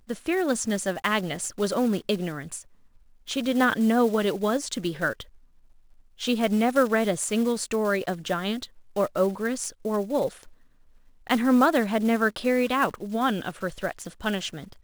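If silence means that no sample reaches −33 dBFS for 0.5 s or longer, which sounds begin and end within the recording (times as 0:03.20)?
0:03.29–0:05.22
0:06.21–0:10.43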